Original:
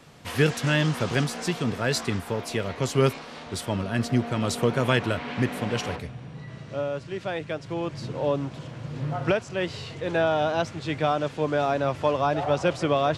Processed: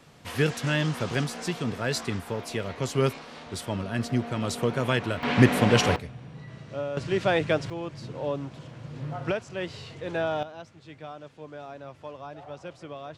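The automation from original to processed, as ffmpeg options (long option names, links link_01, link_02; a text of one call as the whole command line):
ffmpeg -i in.wav -af "asetnsamples=nb_out_samples=441:pad=0,asendcmd='5.23 volume volume 7.5dB;5.96 volume volume -3dB;6.97 volume volume 7dB;7.7 volume volume -5dB;10.43 volume volume -17dB',volume=-3dB" out.wav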